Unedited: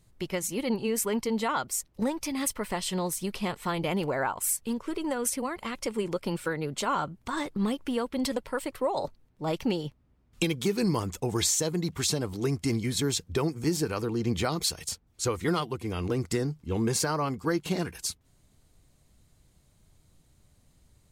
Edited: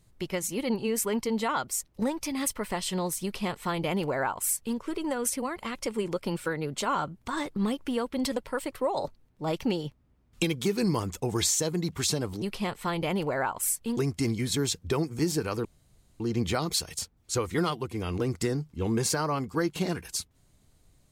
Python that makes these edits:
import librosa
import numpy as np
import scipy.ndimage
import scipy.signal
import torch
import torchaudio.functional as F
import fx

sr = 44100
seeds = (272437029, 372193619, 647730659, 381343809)

y = fx.edit(x, sr, fx.duplicate(start_s=3.23, length_s=1.55, to_s=12.42),
    fx.insert_room_tone(at_s=14.1, length_s=0.55), tone=tone)